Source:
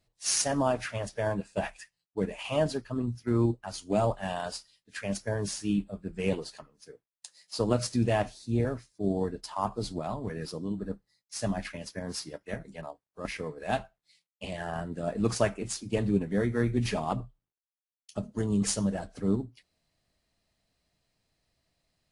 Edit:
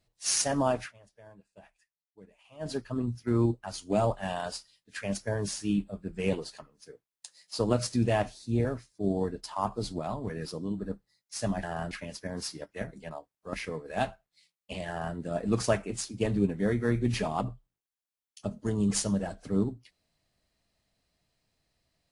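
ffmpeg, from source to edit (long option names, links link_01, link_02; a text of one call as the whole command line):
ffmpeg -i in.wav -filter_complex "[0:a]asplit=5[link_01][link_02][link_03][link_04][link_05];[link_01]atrim=end=0.93,asetpts=PTS-STARTPTS,afade=type=out:start_time=0.78:duration=0.15:silence=0.0707946[link_06];[link_02]atrim=start=0.93:end=2.59,asetpts=PTS-STARTPTS,volume=-23dB[link_07];[link_03]atrim=start=2.59:end=11.632,asetpts=PTS-STARTPTS,afade=type=in:duration=0.15:silence=0.0707946[link_08];[link_04]atrim=start=14.598:end=14.882[link_09];[link_05]atrim=start=11.628[link_10];[link_06][link_07][link_08]concat=n=3:v=0:a=1[link_11];[link_11][link_09]acrossfade=duration=0.004:curve1=hsin:curve2=hsin[link_12];[link_12][link_10]acrossfade=duration=0.004:curve1=hsin:curve2=hsin" out.wav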